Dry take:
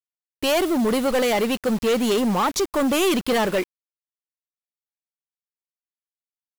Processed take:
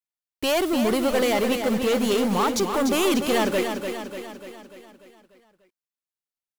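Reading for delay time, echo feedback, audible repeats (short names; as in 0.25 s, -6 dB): 0.295 s, 55%, 6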